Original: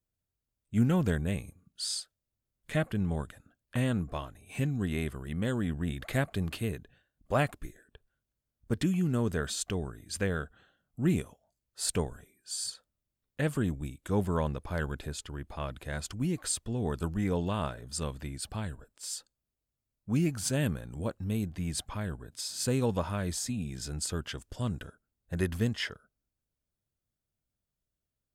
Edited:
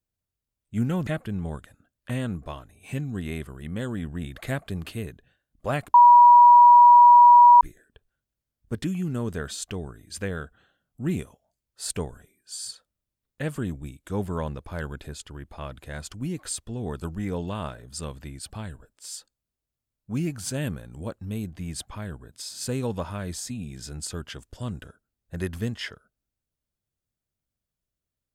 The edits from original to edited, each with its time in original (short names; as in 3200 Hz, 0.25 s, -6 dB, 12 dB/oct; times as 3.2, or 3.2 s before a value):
1.07–2.73 cut
7.6 add tone 965 Hz -8.5 dBFS 1.67 s